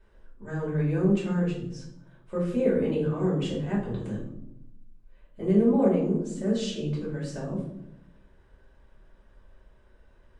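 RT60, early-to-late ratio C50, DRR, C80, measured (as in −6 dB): 0.80 s, 4.5 dB, −7.0 dB, 8.5 dB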